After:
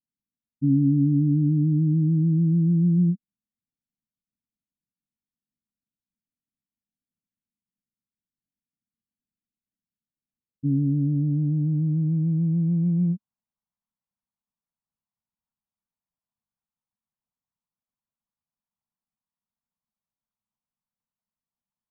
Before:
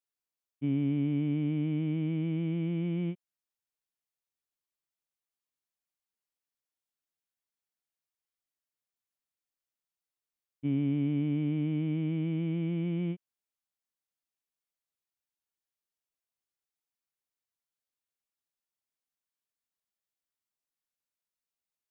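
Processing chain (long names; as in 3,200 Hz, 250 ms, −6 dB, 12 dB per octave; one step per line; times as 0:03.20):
spectral envelope exaggerated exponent 1.5
low shelf with overshoot 280 Hz +9 dB, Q 3
low-pass filter sweep 310 Hz → 1,000 Hz, 0:10.15–0:11.87
level −3 dB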